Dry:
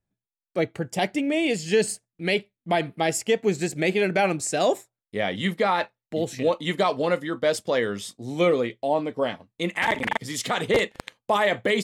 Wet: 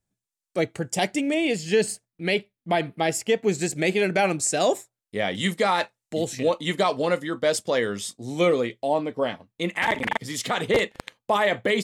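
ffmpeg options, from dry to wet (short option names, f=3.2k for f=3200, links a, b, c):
-af "asetnsamples=n=441:p=0,asendcmd='1.34 equalizer g -1;3.49 equalizer g 5;5.35 equalizer g 13;6.27 equalizer g 5.5;8.98 equalizer g -0.5',equalizer=f=7.8k:t=o:w=1.3:g=9.5"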